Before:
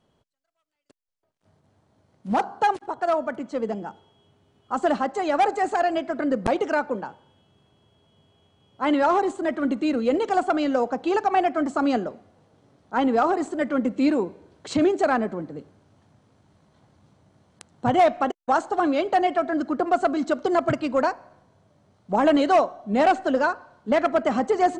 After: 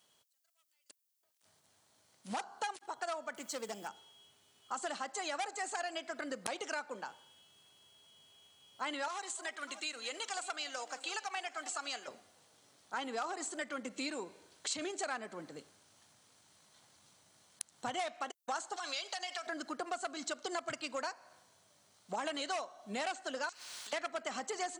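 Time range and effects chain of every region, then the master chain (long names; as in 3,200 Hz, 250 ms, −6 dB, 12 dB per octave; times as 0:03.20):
0:03.36–0:03.88: phase distortion by the signal itself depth 0.082 ms + high-shelf EQ 6,500 Hz +9 dB + bit-depth reduction 12 bits, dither none
0:09.08–0:12.08: high-pass filter 1,400 Hz 6 dB per octave + delay that swaps between a low-pass and a high-pass 295 ms, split 820 Hz, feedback 59%, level −14 dB
0:18.76–0:19.47: high-pass filter 660 Hz + downward compressor 4 to 1, threshold −28 dBFS + parametric band 5,300 Hz +11.5 dB 1.2 octaves
0:23.49–0:23.93: downward compressor 8 to 1, threshold −40 dBFS + every bin compressed towards the loudest bin 4 to 1
whole clip: high-pass filter 69 Hz; first-order pre-emphasis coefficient 0.97; downward compressor 3 to 1, threshold −50 dBFS; level +11.5 dB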